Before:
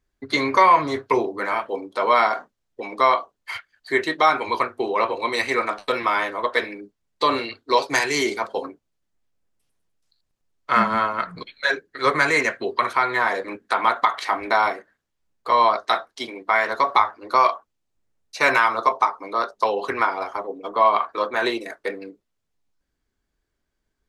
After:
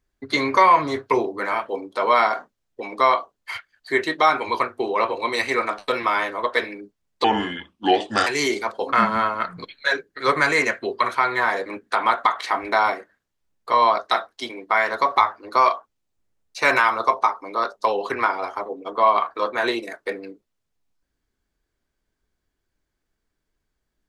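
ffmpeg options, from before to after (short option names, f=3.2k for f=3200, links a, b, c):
-filter_complex "[0:a]asplit=4[a][b][c][d];[a]atrim=end=7.244[e];[b]atrim=start=7.24:end=8.02,asetpts=PTS-STARTPTS,asetrate=33516,aresample=44100[f];[c]atrim=start=8.016:end=8.682[g];[d]atrim=start=10.708[h];[e][f]acrossfade=d=0.004:c1=hsin:c2=hsin[i];[i][g]acrossfade=d=0.004:c1=hsin:c2=hsin[j];[j][h]acrossfade=d=0.004:c1=hsin:c2=hsin"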